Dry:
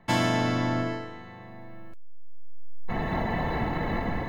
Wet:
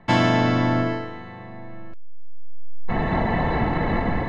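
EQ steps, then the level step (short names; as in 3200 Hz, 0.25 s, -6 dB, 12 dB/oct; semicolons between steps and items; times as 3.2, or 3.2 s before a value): air absorption 120 m; +6.5 dB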